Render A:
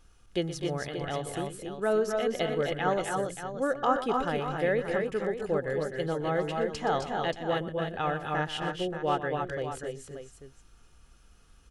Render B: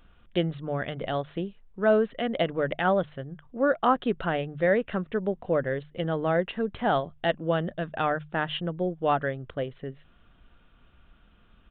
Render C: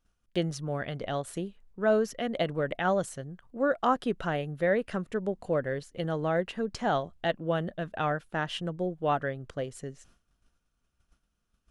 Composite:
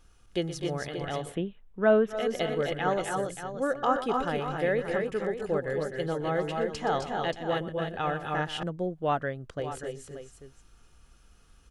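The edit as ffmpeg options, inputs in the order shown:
-filter_complex "[0:a]asplit=3[s0][s1][s2];[s0]atrim=end=1.38[s3];[1:a]atrim=start=1.22:end=2.22[s4];[s1]atrim=start=2.06:end=8.632[s5];[2:a]atrim=start=8.628:end=9.602[s6];[s2]atrim=start=9.598[s7];[s3][s4]acrossfade=d=0.16:c1=tri:c2=tri[s8];[s8][s5]acrossfade=d=0.16:c1=tri:c2=tri[s9];[s9][s6]acrossfade=d=0.004:c1=hsin:c2=hsin[s10];[s10][s7]acrossfade=d=0.004:c1=hsin:c2=hsin"

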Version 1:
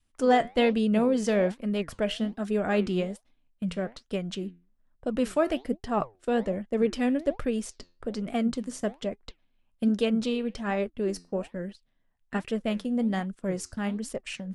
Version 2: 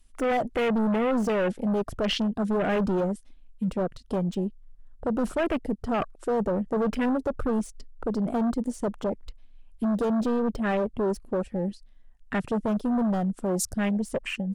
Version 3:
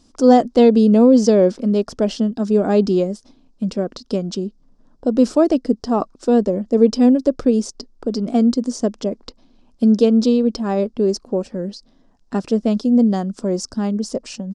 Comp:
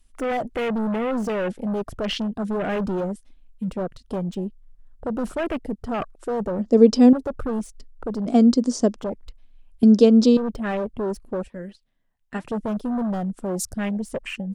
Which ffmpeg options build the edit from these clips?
-filter_complex "[2:a]asplit=3[s0][s1][s2];[1:a]asplit=5[s3][s4][s5][s6][s7];[s3]atrim=end=6.592[s8];[s0]atrim=start=6.588:end=7.132[s9];[s4]atrim=start=7.128:end=8.262[s10];[s1]atrim=start=8.258:end=8.962[s11];[s5]atrim=start=8.958:end=9.832[s12];[s2]atrim=start=9.828:end=10.372[s13];[s6]atrim=start=10.368:end=11.502[s14];[0:a]atrim=start=11.498:end=12.452[s15];[s7]atrim=start=12.448[s16];[s8][s9]acrossfade=d=0.004:c1=hsin:c2=hsin[s17];[s17][s10]acrossfade=d=0.004:c1=hsin:c2=hsin[s18];[s18][s11]acrossfade=d=0.004:c1=hsin:c2=hsin[s19];[s19][s12]acrossfade=d=0.004:c1=hsin:c2=hsin[s20];[s20][s13]acrossfade=d=0.004:c1=hsin:c2=hsin[s21];[s21][s14]acrossfade=d=0.004:c1=hsin:c2=hsin[s22];[s22][s15]acrossfade=d=0.004:c1=hsin:c2=hsin[s23];[s23][s16]acrossfade=d=0.004:c1=hsin:c2=hsin"

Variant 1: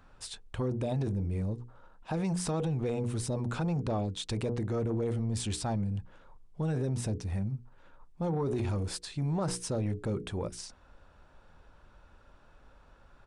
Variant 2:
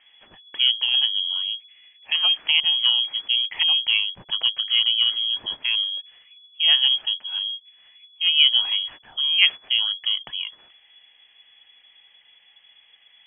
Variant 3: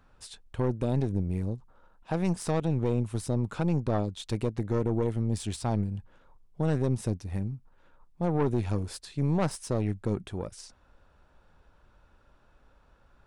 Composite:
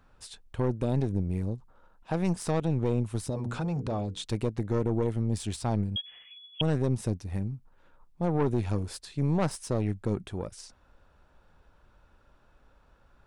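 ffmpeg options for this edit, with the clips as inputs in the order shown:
-filter_complex "[2:a]asplit=3[s0][s1][s2];[s0]atrim=end=3.302[s3];[0:a]atrim=start=3.298:end=4.252[s4];[s1]atrim=start=4.248:end=5.962[s5];[1:a]atrim=start=5.958:end=6.612[s6];[s2]atrim=start=6.608[s7];[s3][s4]acrossfade=d=0.004:c1=hsin:c2=hsin[s8];[s8][s5]acrossfade=d=0.004:c1=hsin:c2=hsin[s9];[s9][s6]acrossfade=d=0.004:c1=hsin:c2=hsin[s10];[s10][s7]acrossfade=d=0.004:c1=hsin:c2=hsin"

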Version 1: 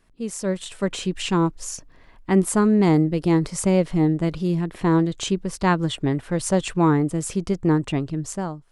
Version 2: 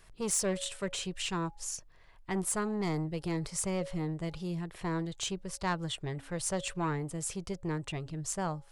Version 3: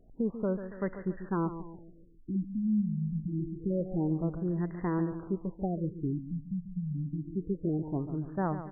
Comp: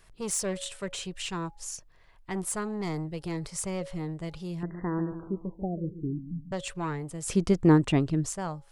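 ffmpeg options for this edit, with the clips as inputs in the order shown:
-filter_complex "[1:a]asplit=3[s0][s1][s2];[s0]atrim=end=4.632[s3];[2:a]atrim=start=4.628:end=6.522[s4];[s1]atrim=start=6.518:end=7.282[s5];[0:a]atrim=start=7.278:end=8.292[s6];[s2]atrim=start=8.288[s7];[s3][s4]acrossfade=d=0.004:c1=hsin:c2=hsin[s8];[s8][s5]acrossfade=d=0.004:c1=hsin:c2=hsin[s9];[s9][s6]acrossfade=d=0.004:c1=hsin:c2=hsin[s10];[s10][s7]acrossfade=d=0.004:c1=hsin:c2=hsin"

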